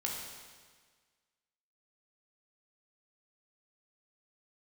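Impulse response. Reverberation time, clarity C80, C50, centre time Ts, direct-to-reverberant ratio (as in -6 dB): 1.6 s, 3.5 dB, 1.5 dB, 74 ms, -2.5 dB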